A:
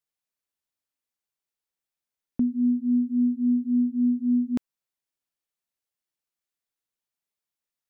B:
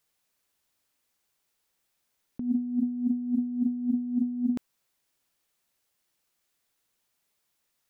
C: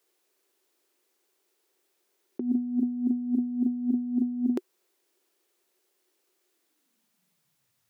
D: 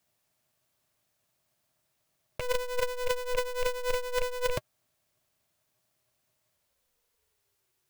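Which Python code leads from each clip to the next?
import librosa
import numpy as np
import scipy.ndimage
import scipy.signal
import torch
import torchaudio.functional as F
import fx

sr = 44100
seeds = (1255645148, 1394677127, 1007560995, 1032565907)

y1 = fx.over_compress(x, sr, threshold_db=-33.0, ratio=-1.0)
y1 = y1 * librosa.db_to_amplitude(4.0)
y2 = fx.peak_eq(y1, sr, hz=160.0, db=3.0, octaves=0.77)
y2 = fx.filter_sweep_highpass(y2, sr, from_hz=370.0, to_hz=100.0, start_s=6.51, end_s=7.85, q=6.7)
y2 = y2 * librosa.db_to_amplitude(2.0)
y3 = fx.rattle_buzz(y2, sr, strikes_db=-34.0, level_db=-22.0)
y3 = y3 * np.sign(np.sin(2.0 * np.pi * 250.0 * np.arange(len(y3)) / sr))
y3 = y3 * librosa.db_to_amplitude(-2.5)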